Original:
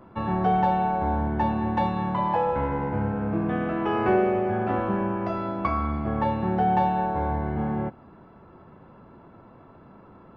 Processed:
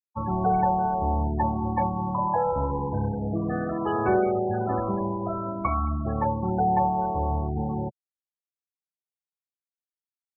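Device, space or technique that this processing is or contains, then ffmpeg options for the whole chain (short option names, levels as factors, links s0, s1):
low shelf boost with a cut just above: -af "lowshelf=f=91:g=4.5,equalizer=f=230:t=o:w=1.1:g=-3.5,afftfilt=real='re*gte(hypot(re,im),0.0631)':imag='im*gte(hypot(re,im),0.0631)':win_size=1024:overlap=0.75"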